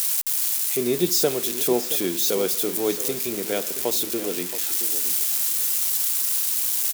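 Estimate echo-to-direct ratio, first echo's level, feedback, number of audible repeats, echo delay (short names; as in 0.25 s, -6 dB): -13.0 dB, -13.0 dB, 20%, 2, 0.674 s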